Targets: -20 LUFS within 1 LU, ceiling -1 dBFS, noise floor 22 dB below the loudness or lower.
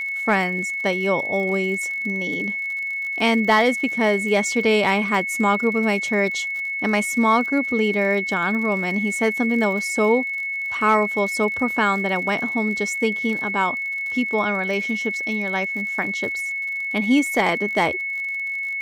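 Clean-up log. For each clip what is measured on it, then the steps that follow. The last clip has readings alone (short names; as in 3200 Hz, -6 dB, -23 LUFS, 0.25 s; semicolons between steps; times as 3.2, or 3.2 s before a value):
ticks 58/s; steady tone 2200 Hz; tone level -24 dBFS; loudness -21.0 LUFS; peak -7.5 dBFS; loudness target -20.0 LUFS
-> de-click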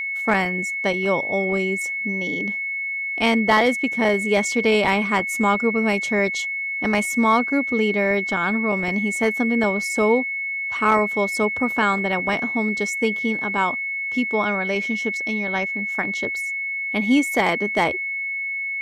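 ticks 0/s; steady tone 2200 Hz; tone level -24 dBFS
-> notch 2200 Hz, Q 30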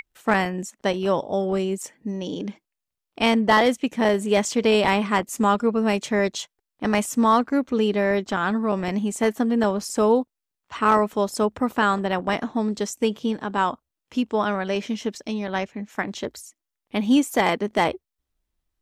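steady tone none; loudness -23.0 LUFS; peak -8.0 dBFS; loudness target -20.0 LUFS
-> gain +3 dB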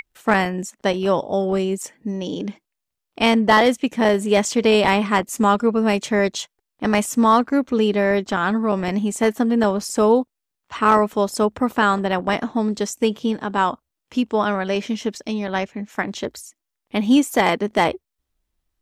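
loudness -20.0 LUFS; peak -5.0 dBFS; noise floor -82 dBFS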